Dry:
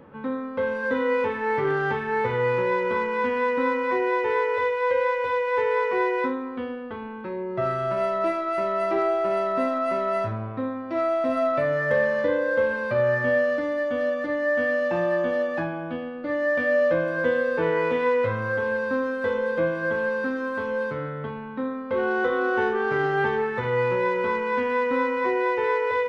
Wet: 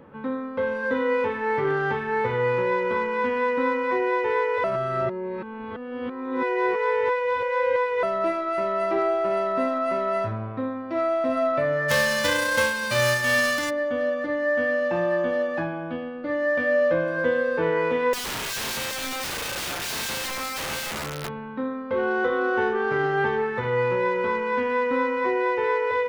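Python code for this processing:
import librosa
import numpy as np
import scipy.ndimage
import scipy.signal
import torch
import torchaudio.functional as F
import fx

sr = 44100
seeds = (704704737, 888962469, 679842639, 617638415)

y = fx.envelope_flatten(x, sr, power=0.3, at=(11.88, 13.69), fade=0.02)
y = fx.overflow_wrap(y, sr, gain_db=25.5, at=(18.13, 21.3))
y = fx.edit(y, sr, fx.reverse_span(start_s=4.64, length_s=3.39), tone=tone)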